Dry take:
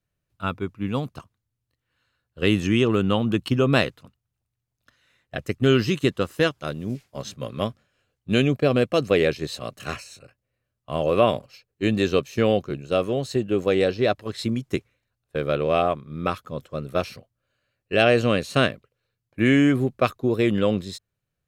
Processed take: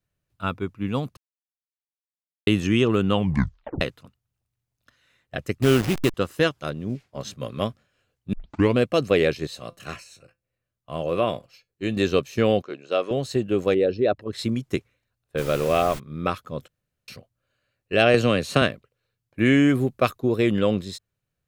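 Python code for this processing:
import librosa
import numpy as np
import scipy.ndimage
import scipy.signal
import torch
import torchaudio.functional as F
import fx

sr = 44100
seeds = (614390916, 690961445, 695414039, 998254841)

y = fx.delta_hold(x, sr, step_db=-23.5, at=(5.62, 6.14))
y = fx.lowpass(y, sr, hz=3400.0, slope=6, at=(6.7, 7.21))
y = fx.comb_fb(y, sr, f0_hz=170.0, decay_s=0.18, harmonics='all', damping=0.0, mix_pct=50, at=(9.47, 11.97))
y = fx.bandpass_edges(y, sr, low_hz=390.0, high_hz=5500.0, at=(12.62, 13.11))
y = fx.envelope_sharpen(y, sr, power=1.5, at=(13.74, 14.33))
y = fx.dmg_noise_colour(y, sr, seeds[0], colour='pink', level_db=-37.0, at=(15.37, 15.98), fade=0.02)
y = fx.band_squash(y, sr, depth_pct=100, at=(18.14, 18.62))
y = fx.high_shelf(y, sr, hz=8500.0, db=7.0, at=(19.69, 20.21))
y = fx.edit(y, sr, fx.silence(start_s=1.17, length_s=1.3),
    fx.tape_stop(start_s=3.14, length_s=0.67),
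    fx.tape_start(start_s=8.33, length_s=0.43),
    fx.room_tone_fill(start_s=16.68, length_s=0.4), tone=tone)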